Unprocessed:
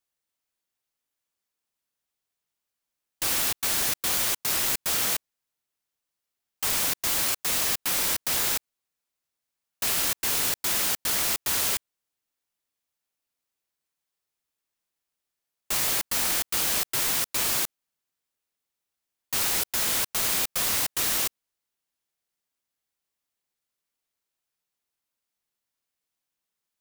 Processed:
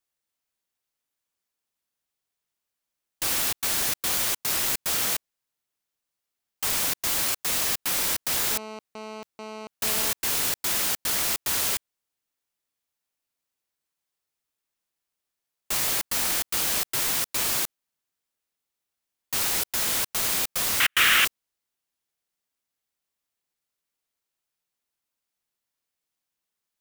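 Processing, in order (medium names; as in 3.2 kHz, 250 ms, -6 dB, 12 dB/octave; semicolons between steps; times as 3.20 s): 8.51–10.11 s: mobile phone buzz -38 dBFS; 20.80–21.25 s: high-order bell 2 kHz +16 dB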